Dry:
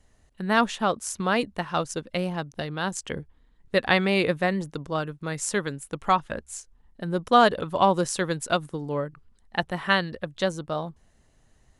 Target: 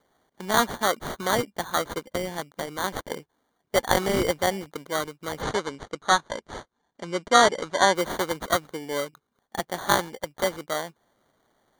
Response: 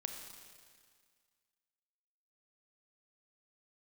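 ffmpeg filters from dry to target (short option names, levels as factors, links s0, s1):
-filter_complex "[0:a]highpass=310,acrusher=samples=17:mix=1:aa=0.000001,asplit=3[s0][s1][s2];[s0]afade=t=out:st=5.41:d=0.02[s3];[s1]lowpass=f=8100:w=0.5412,lowpass=f=8100:w=1.3066,afade=t=in:st=5.41:d=0.02,afade=t=out:st=7.94:d=0.02[s4];[s2]afade=t=in:st=7.94:d=0.02[s5];[s3][s4][s5]amix=inputs=3:normalize=0,volume=1.12"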